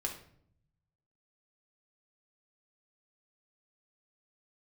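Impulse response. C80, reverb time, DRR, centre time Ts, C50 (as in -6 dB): 12.0 dB, 0.65 s, 1.5 dB, 19 ms, 8.0 dB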